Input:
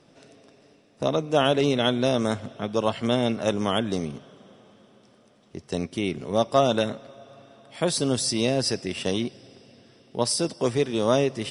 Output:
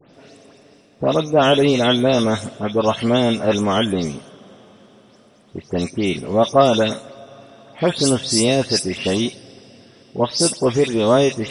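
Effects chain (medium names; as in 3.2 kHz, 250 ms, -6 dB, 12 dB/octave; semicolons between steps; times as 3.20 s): delay that grows with frequency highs late, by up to 135 ms; trim +7 dB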